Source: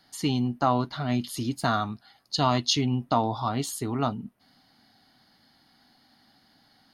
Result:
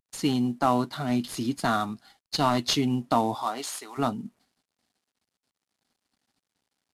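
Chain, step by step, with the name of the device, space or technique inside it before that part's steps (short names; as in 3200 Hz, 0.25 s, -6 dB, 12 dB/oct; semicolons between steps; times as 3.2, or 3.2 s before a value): expander -50 dBFS; early wireless headset (HPF 200 Hz 12 dB/oct; CVSD 64 kbps); 3.34–3.97 HPF 310 Hz -> 1100 Hz 12 dB/oct; low shelf 290 Hz +6 dB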